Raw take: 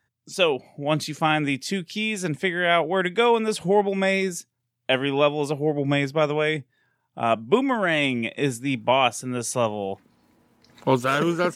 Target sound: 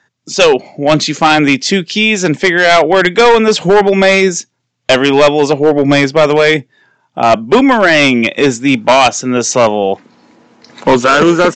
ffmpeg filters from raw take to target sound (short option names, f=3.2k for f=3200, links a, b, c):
-af "highpass=200,aresample=16000,asoftclip=type=hard:threshold=-17.5dB,aresample=44100,apsyclip=19.5dB,volume=-2.5dB"